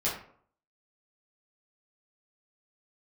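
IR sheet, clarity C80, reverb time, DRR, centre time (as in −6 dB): 9.5 dB, 0.60 s, −8.0 dB, 35 ms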